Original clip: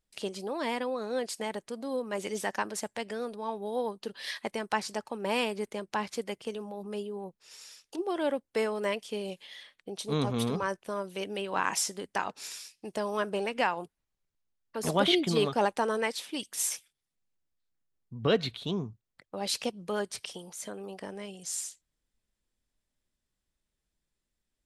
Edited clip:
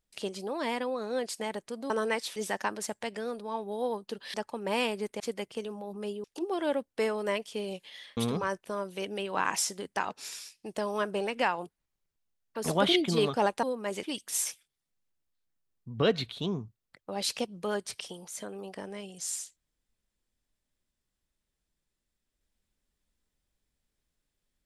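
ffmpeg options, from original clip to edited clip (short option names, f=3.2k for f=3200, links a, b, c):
-filter_complex "[0:a]asplit=9[a][b][c][d][e][f][g][h][i];[a]atrim=end=1.902[j];[b]atrim=start=15.818:end=16.282[k];[c]atrim=start=2.298:end=4.282[l];[d]atrim=start=4.918:end=5.782[m];[e]atrim=start=6.098:end=7.142[n];[f]atrim=start=7.808:end=9.742[o];[g]atrim=start=10.358:end=15.822[p];[h]atrim=start=1.898:end=2.302[q];[i]atrim=start=16.278[r];[j][k]acrossfade=d=0.004:c1=hsin:c2=hsin[s];[s][l]acrossfade=d=0.004:c1=hsin:c2=hsin[t];[t][m]acrossfade=d=0.004:c1=hsin:c2=hsin[u];[u][n]acrossfade=d=0.004:c1=hsin:c2=hsin[v];[v][o]acrossfade=d=0.004:c1=hsin:c2=hsin[w];[w][p]acrossfade=d=0.004:c1=hsin:c2=hsin[x];[x][q]acrossfade=d=0.004:c1=hsin:c2=hsin[y];[y][r]acrossfade=d=0.004:c1=hsin:c2=hsin"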